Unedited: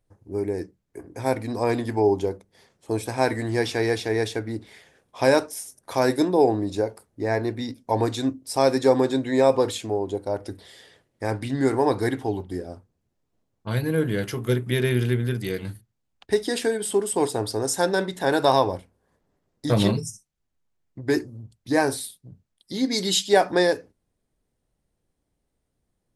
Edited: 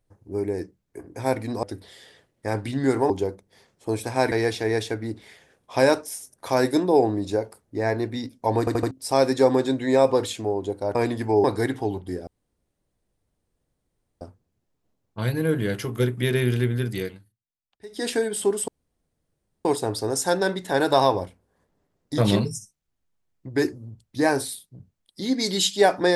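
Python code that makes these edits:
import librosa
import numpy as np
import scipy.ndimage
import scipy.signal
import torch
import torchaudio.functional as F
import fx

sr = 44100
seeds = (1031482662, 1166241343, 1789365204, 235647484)

y = fx.edit(x, sr, fx.swap(start_s=1.63, length_s=0.49, other_s=10.4, other_length_s=1.47),
    fx.cut(start_s=3.34, length_s=0.43),
    fx.stutter_over(start_s=8.04, slice_s=0.08, count=4),
    fx.insert_room_tone(at_s=12.7, length_s=1.94),
    fx.fade_down_up(start_s=15.5, length_s=1.06, db=-20.0, fade_s=0.18),
    fx.insert_room_tone(at_s=17.17, length_s=0.97), tone=tone)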